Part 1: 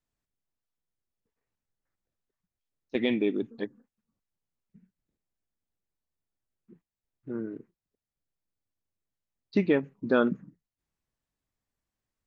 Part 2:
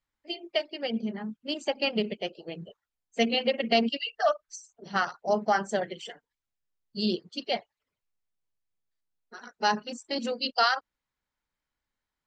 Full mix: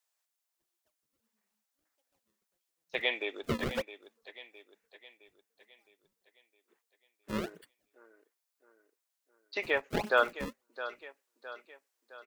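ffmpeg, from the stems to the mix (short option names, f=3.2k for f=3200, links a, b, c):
-filter_complex "[0:a]highpass=f=600:w=0.5412,highpass=f=600:w=1.3066,volume=3dB,asplit=3[a][b][c];[b]volume=-13.5dB[d];[1:a]acrusher=samples=33:mix=1:aa=0.000001:lfo=1:lforange=52.8:lforate=1.6,adelay=300,volume=-8dB[e];[c]apad=whole_len=554036[f];[e][f]sidechaingate=range=-48dB:threshold=-58dB:ratio=16:detection=peak[g];[d]aecho=0:1:663|1326|1989|2652|3315|3978|4641:1|0.49|0.24|0.118|0.0576|0.0282|0.0138[h];[a][g][h]amix=inputs=3:normalize=0,acrossover=split=3900[i][j];[j]acompressor=threshold=-54dB:ratio=4:attack=1:release=60[k];[i][k]amix=inputs=2:normalize=0,highshelf=f=4k:g=8"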